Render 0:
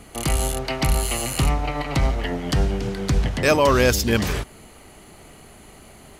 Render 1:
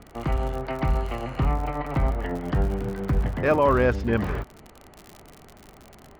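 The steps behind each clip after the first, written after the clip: Chebyshev low-pass 1.4 kHz, order 2; crackle 59 per s -29 dBFS; trim -2 dB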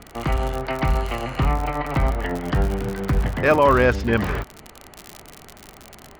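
tilt shelf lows -3.5 dB, about 1.3 kHz; trim +6 dB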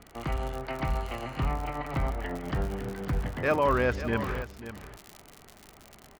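delay 541 ms -12.5 dB; trim -9 dB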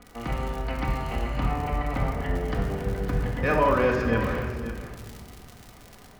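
simulated room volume 1800 m³, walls mixed, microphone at 1.9 m

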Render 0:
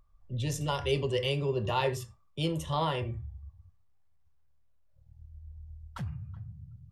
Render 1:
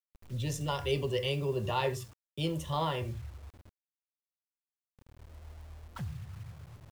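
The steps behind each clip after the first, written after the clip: bit crusher 9-bit; trim -2 dB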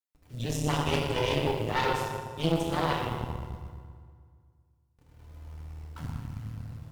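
FDN reverb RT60 2 s, low-frequency decay 1.25×, high-frequency decay 0.7×, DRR -4.5 dB; Chebyshev shaper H 4 -7 dB, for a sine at -12 dBFS; trim -5 dB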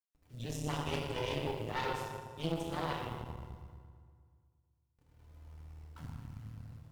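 endings held to a fixed fall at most 190 dB/s; trim -8.5 dB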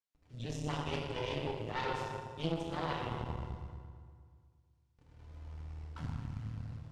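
low-pass 6.2 kHz 12 dB/octave; gain riding within 4 dB 0.5 s; trim +1.5 dB

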